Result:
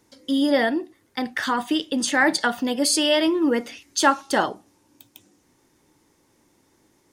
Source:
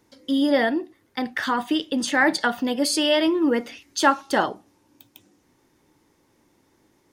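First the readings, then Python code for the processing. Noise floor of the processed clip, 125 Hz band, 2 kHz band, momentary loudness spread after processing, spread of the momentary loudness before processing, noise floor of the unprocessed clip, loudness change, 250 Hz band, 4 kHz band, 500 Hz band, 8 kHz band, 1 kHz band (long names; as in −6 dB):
−64 dBFS, 0.0 dB, +0.5 dB, 10 LU, 10 LU, −65 dBFS, +0.5 dB, 0.0 dB, +1.5 dB, 0.0 dB, +4.5 dB, 0.0 dB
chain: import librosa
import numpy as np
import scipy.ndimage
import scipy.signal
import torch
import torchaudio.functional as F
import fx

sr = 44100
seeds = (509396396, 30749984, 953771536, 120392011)

y = fx.peak_eq(x, sr, hz=8300.0, db=5.5, octaves=1.3)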